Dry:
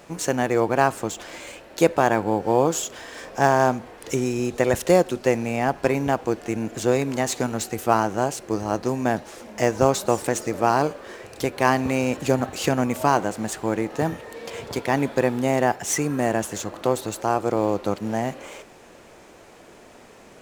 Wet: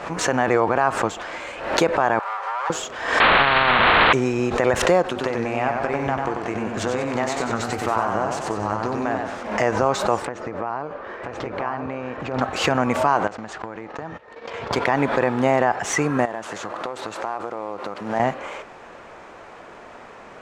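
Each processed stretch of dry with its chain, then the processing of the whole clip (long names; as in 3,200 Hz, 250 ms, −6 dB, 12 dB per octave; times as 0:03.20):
0:02.19–0:02.70: lower of the sound and its delayed copy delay 5.1 ms + high-pass filter 690 Hz 24 dB per octave + downward compressor 4 to 1, threshold −33 dBFS
0:03.20–0:04.13: linear delta modulator 16 kbit/s, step −12.5 dBFS + every bin compressed towards the loudest bin 4 to 1
0:05.04–0:09.43: double-tracking delay 20 ms −12.5 dB + downward compressor 10 to 1, threshold −24 dBFS + feedback echo with a swinging delay time 94 ms, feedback 52%, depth 103 cents, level −4 dB
0:10.25–0:12.41: downward compressor 16 to 1, threshold −27 dBFS + head-to-tape spacing loss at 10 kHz 20 dB + single-tap delay 984 ms −4 dB
0:13.27–0:14.73: noise gate −36 dBFS, range −24 dB + Chebyshev low-pass filter 5,700 Hz + downward compressor 20 to 1, threshold −32 dBFS
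0:16.25–0:18.20: variable-slope delta modulation 64 kbit/s + high-pass filter 200 Hz 6 dB per octave + downward compressor 12 to 1, threshold −30 dBFS
whole clip: drawn EQ curve 330 Hz 0 dB, 1,200 Hz +10 dB, 8,100 Hz −8 dB, 13,000 Hz −19 dB; boost into a limiter +7.5 dB; background raised ahead of every attack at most 77 dB per second; level −6 dB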